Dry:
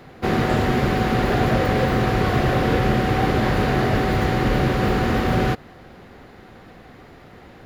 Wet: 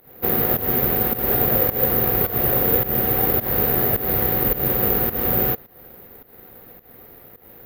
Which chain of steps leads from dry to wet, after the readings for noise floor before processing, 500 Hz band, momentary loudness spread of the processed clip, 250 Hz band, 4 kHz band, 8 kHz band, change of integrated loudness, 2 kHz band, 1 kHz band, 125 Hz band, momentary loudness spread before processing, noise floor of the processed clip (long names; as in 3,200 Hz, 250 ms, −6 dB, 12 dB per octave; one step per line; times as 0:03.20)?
−45 dBFS, −2.5 dB, 2 LU, −6.5 dB, −7.0 dB, +1.0 dB, +2.5 dB, −7.0 dB, −6.0 dB, −7.0 dB, 1 LU, −48 dBFS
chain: parametric band 480 Hz +7 dB 0.59 octaves
fake sidechain pumping 106 BPM, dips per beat 1, −15 dB, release 204 ms
bad sample-rate conversion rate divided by 3×, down filtered, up zero stuff
level −6.5 dB